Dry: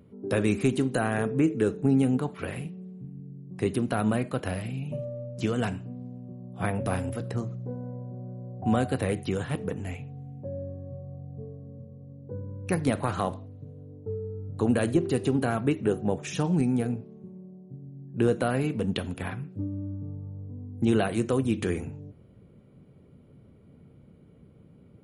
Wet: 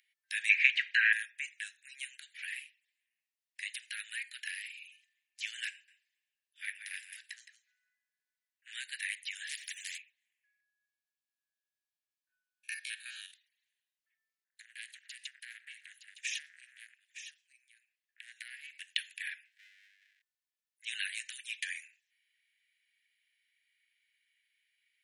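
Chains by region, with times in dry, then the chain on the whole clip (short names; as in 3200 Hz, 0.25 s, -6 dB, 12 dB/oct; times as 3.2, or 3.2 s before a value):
0.49–1.13 LPF 5200 Hz 24 dB/oct + band shelf 1100 Hz +13.5 dB 2.9 oct
5.71–8.72 echo 0.166 s -11.5 dB + core saturation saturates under 520 Hz
9.47–9.98 HPF 660 Hz + spectral compressor 4:1
10.6–13.33 stepped spectrum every 50 ms + Butterworth band-stop 2000 Hz, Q 6.2
14.44–18.75 compressor 5:1, threshold -29 dBFS + echo 0.914 s -11 dB + core saturation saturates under 1200 Hz
19.45–20.22 minimum comb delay 1.9 ms + notch 4500 Hz, Q 25
whole clip: steep high-pass 1700 Hz 96 dB/oct; high shelf 3900 Hz -7 dB; gain +5 dB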